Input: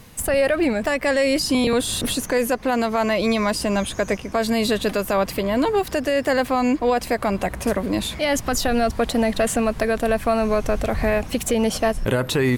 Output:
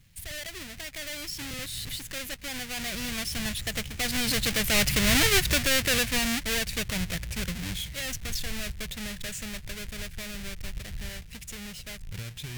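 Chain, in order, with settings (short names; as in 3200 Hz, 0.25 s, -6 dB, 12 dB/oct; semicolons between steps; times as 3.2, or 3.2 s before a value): half-waves squared off; Doppler pass-by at 5.23, 28 m/s, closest 14 m; in parallel at -4 dB: soft clip -20 dBFS, distortion -10 dB; on the sum: band shelf 540 Hz -15.5 dB 2.9 oct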